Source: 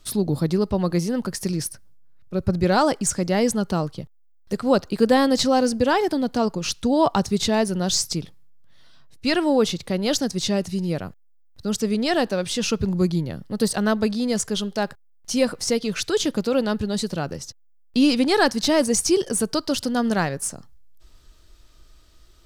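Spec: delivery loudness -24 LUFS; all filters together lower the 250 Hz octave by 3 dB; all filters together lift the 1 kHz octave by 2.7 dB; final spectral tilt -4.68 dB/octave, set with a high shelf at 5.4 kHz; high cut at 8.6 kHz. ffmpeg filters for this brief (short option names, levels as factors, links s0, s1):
-af "lowpass=8600,equalizer=f=250:t=o:g=-4,equalizer=f=1000:t=o:g=4,highshelf=f=5400:g=-6,volume=0.944"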